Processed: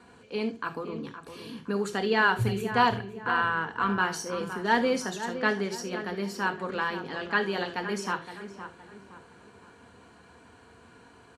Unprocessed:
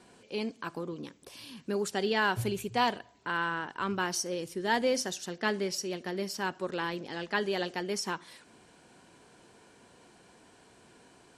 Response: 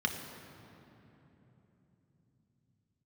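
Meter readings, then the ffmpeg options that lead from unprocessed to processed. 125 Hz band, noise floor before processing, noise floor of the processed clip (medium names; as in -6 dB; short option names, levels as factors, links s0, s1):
+5.5 dB, -60 dBFS, -55 dBFS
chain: -filter_complex "[0:a]lowshelf=f=150:t=q:w=1.5:g=7,asplit=2[s0][s1];[s1]adelay=515,lowpass=f=2000:p=1,volume=0.316,asplit=2[s2][s3];[s3]adelay=515,lowpass=f=2000:p=1,volume=0.4,asplit=2[s4][s5];[s5]adelay=515,lowpass=f=2000:p=1,volume=0.4,asplit=2[s6][s7];[s7]adelay=515,lowpass=f=2000:p=1,volume=0.4[s8];[s0][s2][s4][s6][s8]amix=inputs=5:normalize=0,asplit=2[s9][s10];[1:a]atrim=start_sample=2205,atrim=end_sample=3969[s11];[s10][s11]afir=irnorm=-1:irlink=0,volume=0.668[s12];[s9][s12]amix=inputs=2:normalize=0"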